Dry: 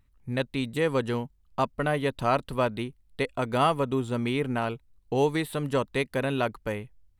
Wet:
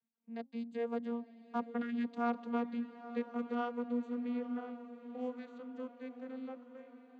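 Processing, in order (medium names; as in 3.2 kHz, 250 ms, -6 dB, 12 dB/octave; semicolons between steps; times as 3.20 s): vocoder on a note that slides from A3, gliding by +4 st; Doppler pass-by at 2.25 s, 13 m/s, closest 13 m; high-pass 160 Hz; de-hum 267.7 Hz, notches 4; spectral selection erased 1.82–2.05 s, 410–1200 Hz; echo that smears into a reverb 901 ms, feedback 54%, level -13 dB; trim -5 dB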